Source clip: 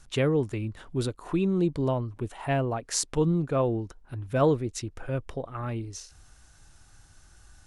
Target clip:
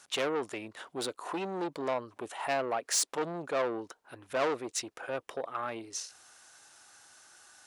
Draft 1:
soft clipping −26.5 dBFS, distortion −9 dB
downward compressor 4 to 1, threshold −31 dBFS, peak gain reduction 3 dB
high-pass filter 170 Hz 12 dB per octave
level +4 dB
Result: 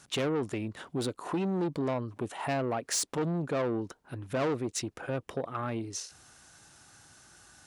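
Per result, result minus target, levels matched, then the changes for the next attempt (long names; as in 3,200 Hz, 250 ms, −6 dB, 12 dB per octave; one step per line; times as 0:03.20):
125 Hz band +13.0 dB; downward compressor: peak gain reduction +3 dB
change: high-pass filter 500 Hz 12 dB per octave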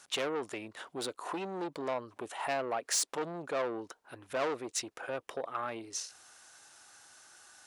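downward compressor: peak gain reduction +3 dB
remove: downward compressor 4 to 1, threshold −31 dBFS, peak gain reduction 3 dB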